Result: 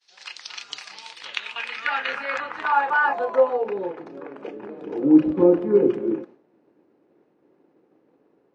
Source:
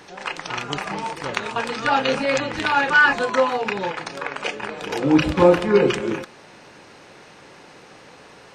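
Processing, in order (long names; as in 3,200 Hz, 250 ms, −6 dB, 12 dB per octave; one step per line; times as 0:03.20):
downward expander −37 dBFS
band-pass filter sweep 4,600 Hz → 320 Hz, 0:00.91–0:04.13
level +3 dB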